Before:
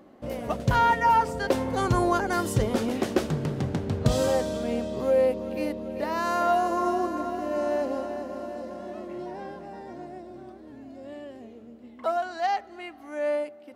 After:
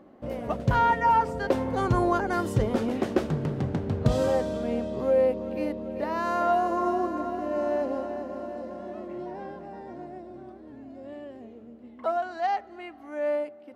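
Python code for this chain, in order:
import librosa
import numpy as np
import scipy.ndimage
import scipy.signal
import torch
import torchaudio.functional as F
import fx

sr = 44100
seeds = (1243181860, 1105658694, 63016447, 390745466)

y = fx.high_shelf(x, sr, hz=3300.0, db=-10.5)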